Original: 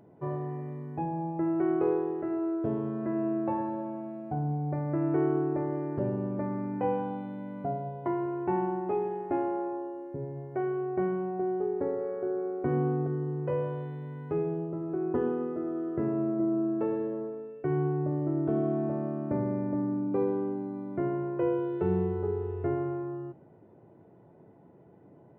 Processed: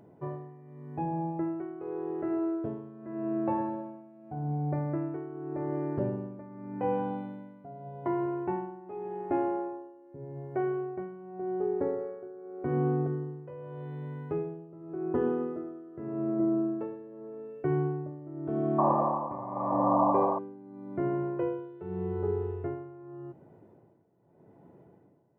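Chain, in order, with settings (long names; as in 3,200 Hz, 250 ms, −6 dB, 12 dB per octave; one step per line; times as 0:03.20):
sound drawn into the spectrogram noise, 0:18.78–0:20.39, 500–1,200 Hz −26 dBFS
amplitude tremolo 0.85 Hz, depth 83%
level +1 dB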